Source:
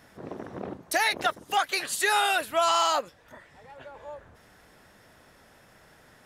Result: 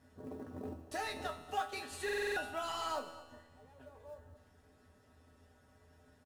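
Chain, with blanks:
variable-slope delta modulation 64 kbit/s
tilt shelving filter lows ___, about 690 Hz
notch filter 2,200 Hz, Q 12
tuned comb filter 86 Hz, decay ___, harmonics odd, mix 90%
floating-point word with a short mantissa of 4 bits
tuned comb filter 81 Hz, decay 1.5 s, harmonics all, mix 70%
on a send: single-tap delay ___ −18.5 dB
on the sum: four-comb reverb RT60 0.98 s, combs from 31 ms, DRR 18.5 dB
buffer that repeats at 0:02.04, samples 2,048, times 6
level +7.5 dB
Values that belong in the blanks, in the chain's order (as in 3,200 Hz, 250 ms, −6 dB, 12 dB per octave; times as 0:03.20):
+6 dB, 0.19 s, 237 ms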